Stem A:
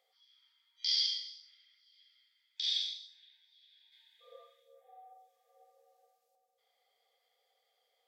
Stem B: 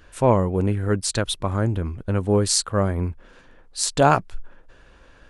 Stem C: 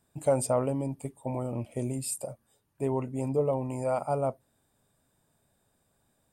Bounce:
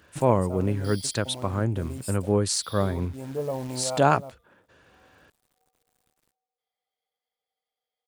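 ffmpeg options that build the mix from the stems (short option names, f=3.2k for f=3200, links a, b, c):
-filter_complex "[0:a]aecho=1:1:6.5:0.65,acrusher=samples=3:mix=1:aa=0.000001,volume=-14dB[a];[1:a]deesser=0.35,highpass=f=79:w=0.5412,highpass=f=79:w=1.3066,volume=-3.5dB,asplit=2[b][c];[2:a]acrusher=bits=8:dc=4:mix=0:aa=0.000001,volume=2.5dB[d];[c]apad=whole_len=278836[e];[d][e]sidechaincompress=threshold=-28dB:ratio=8:attack=7.1:release=1060[f];[a][b][f]amix=inputs=3:normalize=0"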